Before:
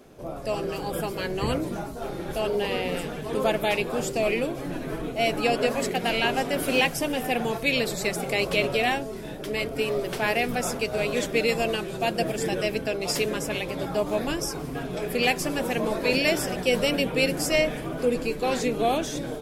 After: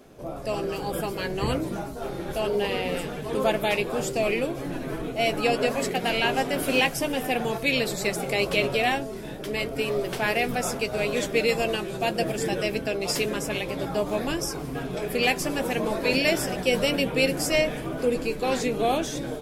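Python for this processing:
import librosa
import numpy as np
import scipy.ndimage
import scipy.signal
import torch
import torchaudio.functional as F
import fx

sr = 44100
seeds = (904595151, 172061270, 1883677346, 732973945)

y = fx.doubler(x, sr, ms=15.0, db=-13)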